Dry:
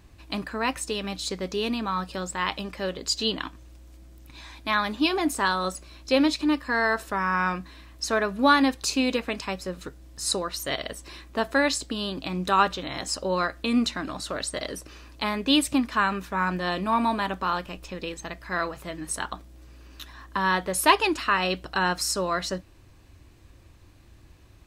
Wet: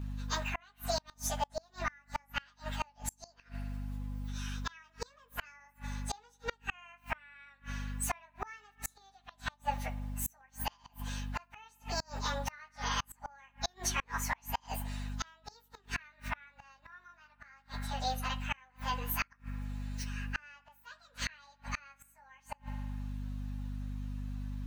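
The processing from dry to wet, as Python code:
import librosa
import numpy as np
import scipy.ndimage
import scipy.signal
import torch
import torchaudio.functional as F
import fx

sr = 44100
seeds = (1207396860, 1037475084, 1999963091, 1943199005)

y = fx.pitch_bins(x, sr, semitones=7.5)
y = scipy.signal.sosfilt(scipy.signal.butter(4, 790.0, 'highpass', fs=sr, output='sos'), y)
y = fx.peak_eq(y, sr, hz=11000.0, db=-8.0, octaves=2.9)
y = fx.add_hum(y, sr, base_hz=50, snr_db=11)
y = fx.rev_spring(y, sr, rt60_s=1.3, pass_ms=(52,), chirp_ms=30, drr_db=17.0)
y = fx.gate_flip(y, sr, shuts_db=-29.0, range_db=-34)
y = F.gain(torch.from_numpy(y), 8.0).numpy()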